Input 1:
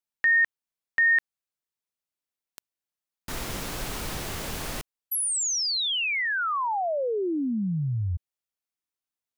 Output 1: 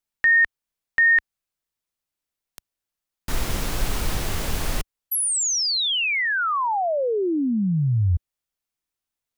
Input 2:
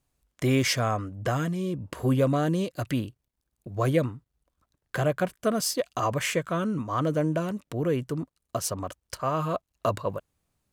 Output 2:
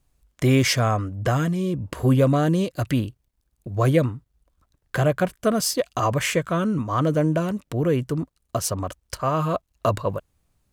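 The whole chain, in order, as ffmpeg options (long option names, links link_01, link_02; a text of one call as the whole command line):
ffmpeg -i in.wav -af "lowshelf=frequency=69:gain=11.5,volume=4dB" out.wav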